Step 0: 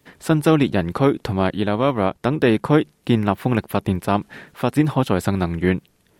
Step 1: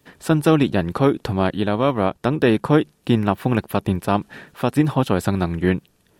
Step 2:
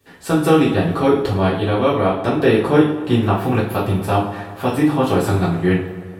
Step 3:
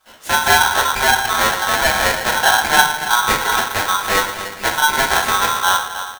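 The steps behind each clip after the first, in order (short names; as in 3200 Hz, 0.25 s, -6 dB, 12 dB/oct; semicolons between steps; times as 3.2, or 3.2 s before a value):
notch 2100 Hz, Q 13
on a send: dark delay 0.115 s, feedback 72%, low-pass 1500 Hz, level -14.5 dB; on the sum: two-slope reverb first 0.44 s, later 1.7 s, DRR -7 dB; gain -5 dB
echo 0.281 s -12 dB; polarity switched at an audio rate 1200 Hz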